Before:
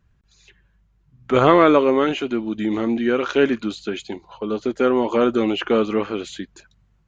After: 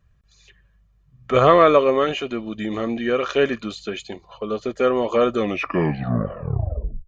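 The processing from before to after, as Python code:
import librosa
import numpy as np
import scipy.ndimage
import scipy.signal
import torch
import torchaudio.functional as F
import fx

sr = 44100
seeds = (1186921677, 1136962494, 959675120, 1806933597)

y = fx.tape_stop_end(x, sr, length_s=1.7)
y = y + 0.51 * np.pad(y, (int(1.7 * sr / 1000.0), 0))[:len(y)]
y = y * 10.0 ** (-1.0 / 20.0)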